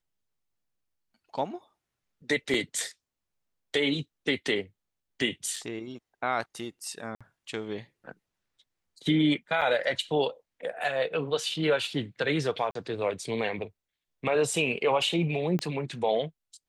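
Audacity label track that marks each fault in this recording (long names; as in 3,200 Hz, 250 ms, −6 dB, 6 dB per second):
2.540000	2.540000	drop-out 3.5 ms
5.560000	5.560000	drop-out 4.4 ms
7.150000	7.210000	drop-out 56 ms
9.610000	9.620000	drop-out 6.6 ms
12.710000	12.750000	drop-out 43 ms
15.590000	15.590000	click −18 dBFS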